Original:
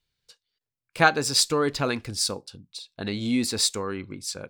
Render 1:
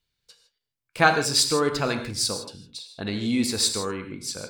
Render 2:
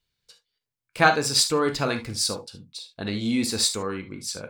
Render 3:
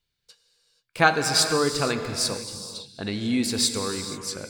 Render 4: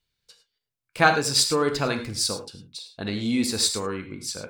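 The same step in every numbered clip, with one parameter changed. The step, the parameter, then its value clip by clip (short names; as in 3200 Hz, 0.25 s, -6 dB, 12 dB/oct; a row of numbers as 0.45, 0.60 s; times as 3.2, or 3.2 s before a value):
non-linear reverb, gate: 180, 90, 510, 130 ms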